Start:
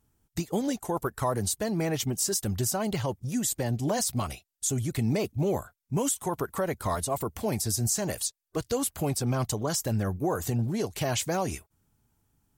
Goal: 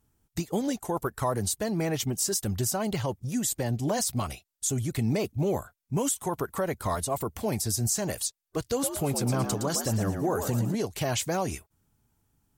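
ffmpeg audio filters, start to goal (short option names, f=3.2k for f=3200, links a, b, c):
-filter_complex "[0:a]asettb=1/sr,asplit=3[a][b][c];[a]atrim=end=8.614[d];[b]atrim=start=8.61:end=10.75,asetpts=PTS-STARTPTS,afade=t=in:d=0.004:c=qsin,afade=t=out:st=2.136:d=0.004:c=qsin,asplit=6[e][f][g][h][i][j];[f]adelay=114,afreqshift=72,volume=-7dB[k];[g]adelay=228,afreqshift=144,volume=-15dB[l];[h]adelay=342,afreqshift=216,volume=-22.9dB[m];[i]adelay=456,afreqshift=288,volume=-30.9dB[n];[j]adelay=570,afreqshift=360,volume=-38.8dB[o];[e][k][l][m][n][o]amix=inputs=6:normalize=0,atrim=end_sample=94374[p];[c]atrim=start=10.746[q];[d][p]acrossfade=d=0.004:c1=hsin:c2=qsin[r];[r][q]acrossfade=d=0.004:c1=qsin:c2=hsin"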